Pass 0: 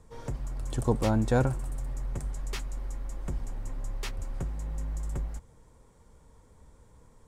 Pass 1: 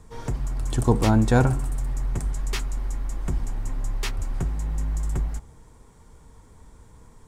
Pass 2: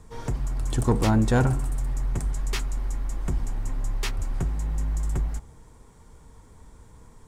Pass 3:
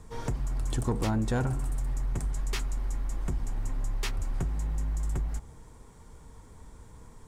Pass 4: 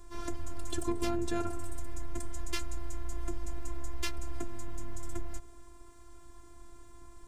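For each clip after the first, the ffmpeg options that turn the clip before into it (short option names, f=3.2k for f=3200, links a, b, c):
-af "equalizer=f=540:t=o:w=0.28:g=-7.5,bandreject=f=68.37:t=h:w=4,bandreject=f=136.74:t=h:w=4,bandreject=f=205.11:t=h:w=4,bandreject=f=273.48:t=h:w=4,bandreject=f=341.85:t=h:w=4,bandreject=f=410.22:t=h:w=4,bandreject=f=478.59:t=h:w=4,bandreject=f=546.96:t=h:w=4,bandreject=f=615.33:t=h:w=4,bandreject=f=683.7:t=h:w=4,bandreject=f=752.07:t=h:w=4,bandreject=f=820.44:t=h:w=4,bandreject=f=888.81:t=h:w=4,bandreject=f=957.18:t=h:w=4,bandreject=f=1.02555k:t=h:w=4,bandreject=f=1.09392k:t=h:w=4,bandreject=f=1.16229k:t=h:w=4,bandreject=f=1.23066k:t=h:w=4,bandreject=f=1.29903k:t=h:w=4,bandreject=f=1.3674k:t=h:w=4,volume=7.5dB"
-af "asoftclip=type=tanh:threshold=-12dB"
-af "acompressor=threshold=-28dB:ratio=2.5"
-filter_complex "[0:a]acrossover=split=530|1500[a][b][c];[b]asoftclip=type=tanh:threshold=-37dB[d];[a][d][c]amix=inputs=3:normalize=0,afftfilt=real='hypot(re,im)*cos(PI*b)':imag='0':win_size=512:overlap=0.75,volume=2.5dB"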